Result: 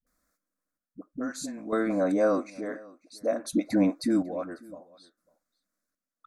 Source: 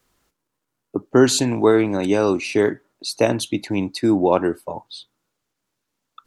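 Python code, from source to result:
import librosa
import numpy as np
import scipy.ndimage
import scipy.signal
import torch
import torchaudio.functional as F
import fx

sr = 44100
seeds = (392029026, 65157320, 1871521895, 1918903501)

y = fx.peak_eq(x, sr, hz=660.0, db=11.0, octaves=2.7, at=(1.84, 3.97))
y = fx.rider(y, sr, range_db=4, speed_s=0.5)
y = fx.fixed_phaser(y, sr, hz=590.0, stages=8)
y = fx.dispersion(y, sr, late='highs', ms=67.0, hz=330.0)
y = fx.chopper(y, sr, hz=0.58, depth_pct=65, duty_pct=45)
y = y + 10.0 ** (-23.5 / 20.0) * np.pad(y, (int(547 * sr / 1000.0), 0))[:len(y)]
y = y * 10.0 ** (-7.5 / 20.0)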